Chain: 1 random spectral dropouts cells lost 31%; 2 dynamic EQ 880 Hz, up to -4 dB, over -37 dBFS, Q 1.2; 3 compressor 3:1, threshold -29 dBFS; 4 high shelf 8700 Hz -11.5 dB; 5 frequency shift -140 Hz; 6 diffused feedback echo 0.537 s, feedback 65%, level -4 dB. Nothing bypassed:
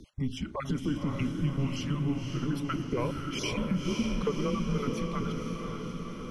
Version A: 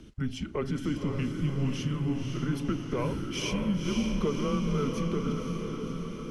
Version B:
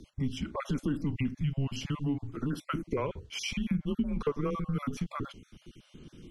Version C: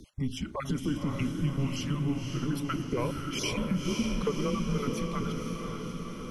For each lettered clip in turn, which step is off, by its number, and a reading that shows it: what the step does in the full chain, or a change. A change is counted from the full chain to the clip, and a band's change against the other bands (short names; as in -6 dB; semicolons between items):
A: 1, 1 kHz band -2.0 dB; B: 6, echo-to-direct -1.5 dB to none; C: 4, 8 kHz band +3.5 dB